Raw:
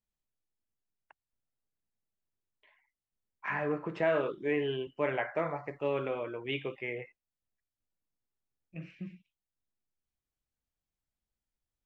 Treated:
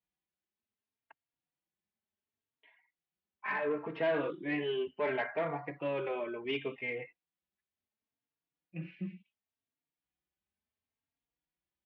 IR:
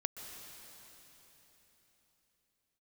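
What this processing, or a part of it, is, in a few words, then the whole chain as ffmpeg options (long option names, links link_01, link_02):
barber-pole flanger into a guitar amplifier: -filter_complex "[0:a]asplit=2[link_01][link_02];[link_02]adelay=3.7,afreqshift=0.7[link_03];[link_01][link_03]amix=inputs=2:normalize=1,asoftclip=type=tanh:threshold=-28dB,highpass=100,equalizer=frequency=120:width_type=q:width=4:gain=-8,equalizer=frequency=530:width_type=q:width=4:gain=-4,equalizer=frequency=1300:width_type=q:width=4:gain=-4,lowpass=frequency=3600:width=0.5412,lowpass=frequency=3600:width=1.3066,volume=4.5dB"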